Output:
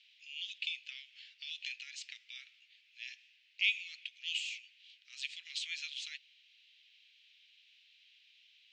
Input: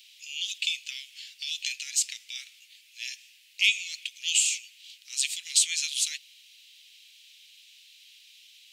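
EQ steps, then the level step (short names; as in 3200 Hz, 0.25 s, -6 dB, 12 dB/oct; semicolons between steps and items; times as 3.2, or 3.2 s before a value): HPF 1200 Hz; air absorption 97 m; tape spacing loss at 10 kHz 27 dB; +1.0 dB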